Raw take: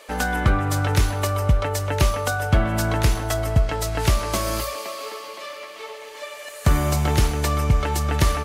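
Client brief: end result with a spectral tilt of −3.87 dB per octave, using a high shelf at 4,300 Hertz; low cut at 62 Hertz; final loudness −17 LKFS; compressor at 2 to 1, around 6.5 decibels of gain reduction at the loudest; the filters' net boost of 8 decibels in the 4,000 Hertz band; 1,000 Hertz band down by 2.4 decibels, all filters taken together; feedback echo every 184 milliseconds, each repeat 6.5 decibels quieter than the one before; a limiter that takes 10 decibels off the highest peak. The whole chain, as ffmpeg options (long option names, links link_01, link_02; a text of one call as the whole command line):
ffmpeg -i in.wav -af "highpass=62,equalizer=frequency=1000:width_type=o:gain=-4,equalizer=frequency=4000:width_type=o:gain=5.5,highshelf=frequency=4300:gain=8.5,acompressor=threshold=-25dB:ratio=2,alimiter=limit=-17dB:level=0:latency=1,aecho=1:1:184|368|552|736|920|1104:0.473|0.222|0.105|0.0491|0.0231|0.0109,volume=9.5dB" out.wav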